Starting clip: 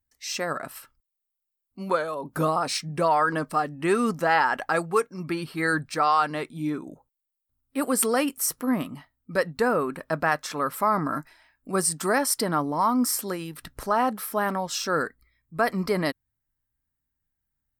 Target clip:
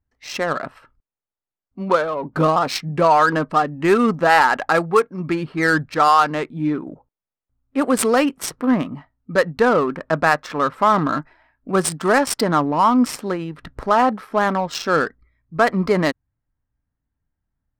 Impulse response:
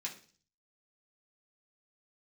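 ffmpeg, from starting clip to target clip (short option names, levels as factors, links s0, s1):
-af "adynamicsmooth=sensitivity=3.5:basefreq=1600,volume=2.37" -ar 48000 -c:a libmp3lame -b:a 320k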